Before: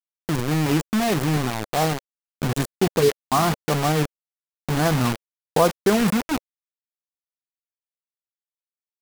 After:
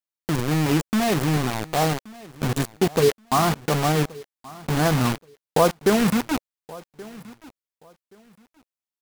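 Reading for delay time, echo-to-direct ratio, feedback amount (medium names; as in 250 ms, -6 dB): 1126 ms, -21.0 dB, 22%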